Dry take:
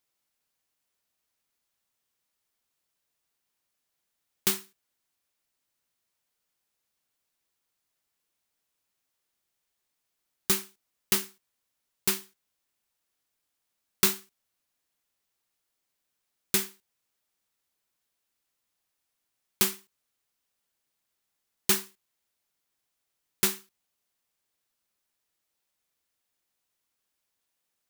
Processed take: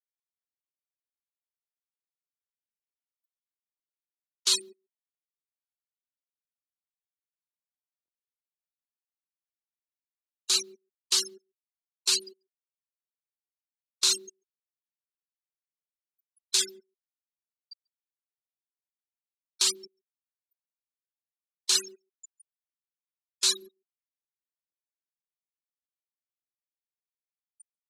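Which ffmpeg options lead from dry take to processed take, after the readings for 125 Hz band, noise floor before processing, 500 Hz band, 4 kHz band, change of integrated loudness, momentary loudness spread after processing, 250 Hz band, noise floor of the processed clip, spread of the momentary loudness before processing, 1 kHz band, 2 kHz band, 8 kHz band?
below −20 dB, −82 dBFS, −5.5 dB, +8.0 dB, +1.0 dB, 10 LU, below −10 dB, below −85 dBFS, 13 LU, −6.0 dB, −4.5 dB, +3.5 dB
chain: -filter_complex "[0:a]aeval=exprs='val(0)+0.5*0.0316*sgn(val(0))':channel_layout=same,afftfilt=real='re*gte(hypot(re,im),0.0355)':imag='im*gte(hypot(re,im),0.0355)':win_size=1024:overlap=0.75,areverse,acompressor=threshold=-36dB:ratio=16,areverse,crystalizer=i=8.5:c=0,highpass=frequency=320:width=0.5412,highpass=frequency=320:width=1.3066,equalizer=frequency=990:width_type=q:width=4:gain=4,equalizer=frequency=2000:width_type=q:width=4:gain=-9,equalizer=frequency=4100:width_type=q:width=4:gain=9,lowpass=frequency=7300:width=0.5412,lowpass=frequency=7300:width=1.3066,asplit=2[link_01][link_02];[link_02]adelay=140,highpass=300,lowpass=3400,asoftclip=type=hard:threshold=-39dB,volume=-29dB[link_03];[link_01][link_03]amix=inputs=2:normalize=0,volume=2dB"

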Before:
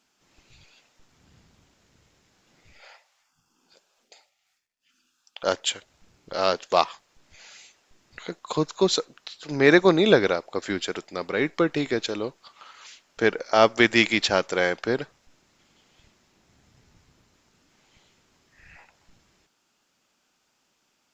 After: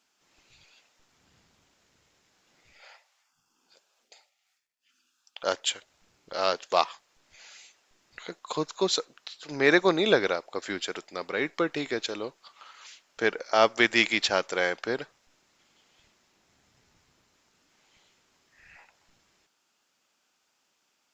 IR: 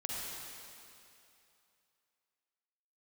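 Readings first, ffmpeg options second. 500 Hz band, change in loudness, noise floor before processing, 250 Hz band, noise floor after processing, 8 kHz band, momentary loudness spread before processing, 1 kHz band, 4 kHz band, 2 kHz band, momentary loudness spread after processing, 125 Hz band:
−4.5 dB, −4.0 dB, −72 dBFS, −6.5 dB, −74 dBFS, can't be measured, 17 LU, −3.0 dB, −2.0 dB, −2.0 dB, 18 LU, −9.5 dB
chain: -af "lowshelf=frequency=290:gain=-9.5,volume=-2dB"

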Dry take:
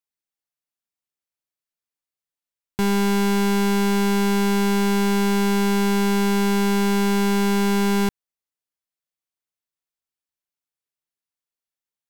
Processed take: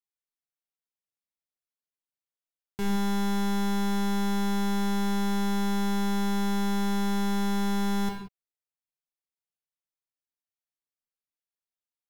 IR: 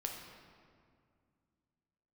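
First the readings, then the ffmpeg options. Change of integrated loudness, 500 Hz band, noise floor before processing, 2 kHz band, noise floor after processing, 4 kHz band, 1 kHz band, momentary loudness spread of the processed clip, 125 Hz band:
−8.0 dB, −13.0 dB, below −85 dBFS, −10.5 dB, below −85 dBFS, −7.5 dB, −7.0 dB, 3 LU, can't be measured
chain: -filter_complex "[1:a]atrim=start_sample=2205,afade=type=out:start_time=0.24:duration=0.01,atrim=end_sample=11025[link_01];[0:a][link_01]afir=irnorm=-1:irlink=0,volume=-8dB"

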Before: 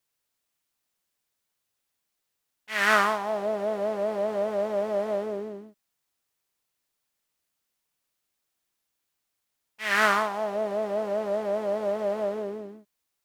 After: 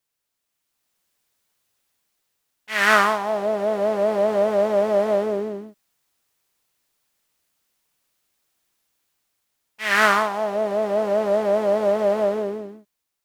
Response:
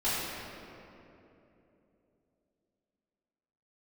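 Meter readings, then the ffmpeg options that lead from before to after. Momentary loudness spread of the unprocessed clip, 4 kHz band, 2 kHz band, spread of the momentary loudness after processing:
12 LU, +5.0 dB, +5.0 dB, 11 LU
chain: -af "dynaudnorm=framelen=120:gausssize=13:maxgain=8dB"

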